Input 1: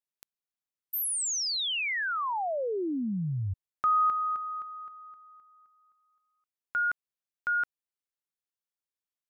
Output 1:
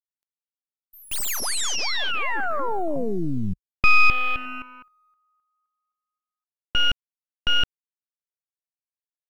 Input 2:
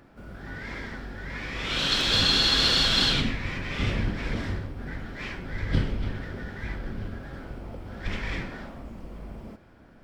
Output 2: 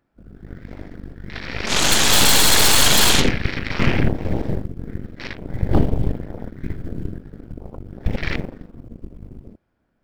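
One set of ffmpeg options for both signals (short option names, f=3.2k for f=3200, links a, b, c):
-af "acrusher=bits=7:mode=log:mix=0:aa=0.000001,afwtdn=0.0224,aeval=exprs='0.335*(cos(1*acos(clip(val(0)/0.335,-1,1)))-cos(1*PI/2))+0.0299*(cos(3*acos(clip(val(0)/0.335,-1,1)))-cos(3*PI/2))+0.168*(cos(8*acos(clip(val(0)/0.335,-1,1)))-cos(8*PI/2))':c=same,volume=2.5dB"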